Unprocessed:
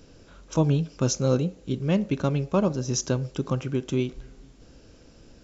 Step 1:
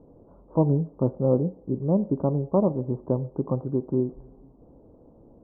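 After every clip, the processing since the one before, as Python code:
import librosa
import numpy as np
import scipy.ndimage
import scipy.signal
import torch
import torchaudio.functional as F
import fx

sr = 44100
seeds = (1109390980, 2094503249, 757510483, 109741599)

y = scipy.signal.sosfilt(scipy.signal.butter(8, 1000.0, 'lowpass', fs=sr, output='sos'), x)
y = fx.low_shelf(y, sr, hz=94.0, db=-10.5)
y = y * librosa.db_to_amplitude(2.5)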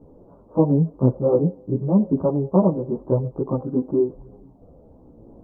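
y = fx.chorus_voices(x, sr, voices=2, hz=0.46, base_ms=14, depth_ms=4.4, mix_pct=60)
y = y * librosa.db_to_amplitude(7.0)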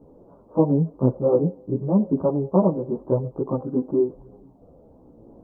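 y = fx.low_shelf(x, sr, hz=130.0, db=-6.5)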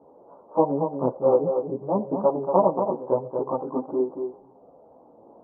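y = fx.bandpass_q(x, sr, hz=870.0, q=1.7)
y = y + 10.0 ** (-6.5 / 20.0) * np.pad(y, (int(232 * sr / 1000.0), 0))[:len(y)]
y = y * librosa.db_to_amplitude(7.0)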